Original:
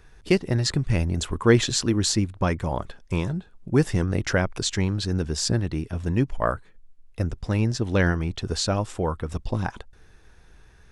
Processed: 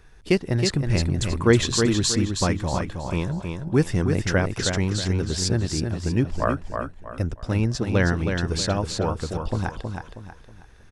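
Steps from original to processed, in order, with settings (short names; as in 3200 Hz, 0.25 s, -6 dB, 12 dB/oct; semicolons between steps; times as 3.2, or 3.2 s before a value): feedback echo 0.319 s, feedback 35%, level -5.5 dB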